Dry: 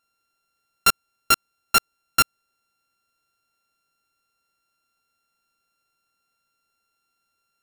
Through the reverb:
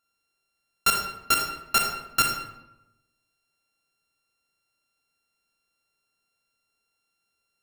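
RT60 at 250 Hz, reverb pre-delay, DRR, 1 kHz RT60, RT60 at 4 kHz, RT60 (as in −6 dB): 1.0 s, 34 ms, 1.5 dB, 0.90 s, 0.60 s, 0.95 s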